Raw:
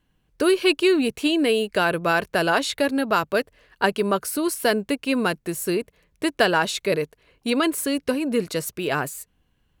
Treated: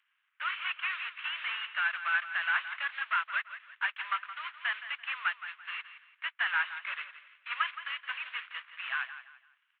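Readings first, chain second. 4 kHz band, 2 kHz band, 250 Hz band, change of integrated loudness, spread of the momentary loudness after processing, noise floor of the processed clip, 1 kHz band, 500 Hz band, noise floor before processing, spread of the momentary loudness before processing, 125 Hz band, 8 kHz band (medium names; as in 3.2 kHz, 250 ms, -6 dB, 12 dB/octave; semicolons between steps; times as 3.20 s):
-10.5 dB, -4.0 dB, under -40 dB, -10.5 dB, 10 LU, -77 dBFS, -10.5 dB, under -40 dB, -68 dBFS, 8 LU, under -40 dB, under -40 dB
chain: CVSD coder 16 kbps; steep high-pass 1.2 kHz 36 dB/octave; on a send: feedback delay 169 ms, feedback 31%, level -12.5 dB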